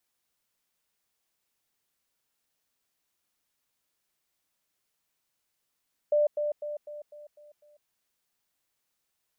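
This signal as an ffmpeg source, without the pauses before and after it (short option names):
-f lavfi -i "aevalsrc='pow(10,(-20-6*floor(t/0.25))/20)*sin(2*PI*593*t)*clip(min(mod(t,0.25),0.15-mod(t,0.25))/0.005,0,1)':d=1.75:s=44100"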